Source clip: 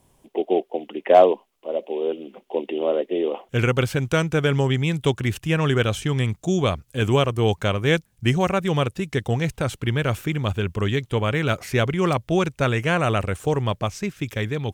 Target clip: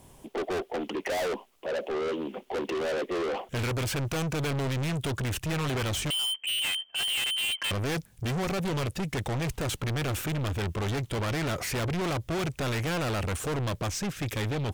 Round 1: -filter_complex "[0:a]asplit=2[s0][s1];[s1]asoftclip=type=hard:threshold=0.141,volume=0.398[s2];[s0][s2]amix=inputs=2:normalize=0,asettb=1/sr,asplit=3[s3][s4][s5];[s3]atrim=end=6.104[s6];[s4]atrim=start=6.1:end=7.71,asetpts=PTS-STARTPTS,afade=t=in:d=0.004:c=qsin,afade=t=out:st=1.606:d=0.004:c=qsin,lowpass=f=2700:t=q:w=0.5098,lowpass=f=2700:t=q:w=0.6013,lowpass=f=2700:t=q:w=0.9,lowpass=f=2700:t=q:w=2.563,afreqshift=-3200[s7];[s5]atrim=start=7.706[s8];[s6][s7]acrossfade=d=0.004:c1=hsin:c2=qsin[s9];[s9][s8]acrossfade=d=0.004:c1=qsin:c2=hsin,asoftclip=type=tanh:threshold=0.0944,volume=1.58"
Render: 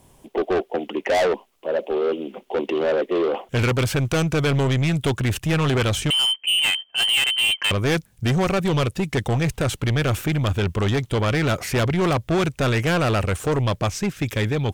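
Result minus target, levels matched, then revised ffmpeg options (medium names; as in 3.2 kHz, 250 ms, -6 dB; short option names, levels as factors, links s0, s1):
saturation: distortion -5 dB
-filter_complex "[0:a]asplit=2[s0][s1];[s1]asoftclip=type=hard:threshold=0.141,volume=0.398[s2];[s0][s2]amix=inputs=2:normalize=0,asettb=1/sr,asplit=3[s3][s4][s5];[s3]atrim=end=6.104[s6];[s4]atrim=start=6.1:end=7.71,asetpts=PTS-STARTPTS,afade=t=in:d=0.004:c=qsin,afade=t=out:st=1.606:d=0.004:c=qsin,lowpass=f=2700:t=q:w=0.5098,lowpass=f=2700:t=q:w=0.6013,lowpass=f=2700:t=q:w=0.9,lowpass=f=2700:t=q:w=2.563,afreqshift=-3200[s7];[s5]atrim=start=7.706[s8];[s6][s7]acrossfade=d=0.004:c1=hsin:c2=qsin[s9];[s9][s8]acrossfade=d=0.004:c1=qsin:c2=hsin,asoftclip=type=tanh:threshold=0.0251,volume=1.58"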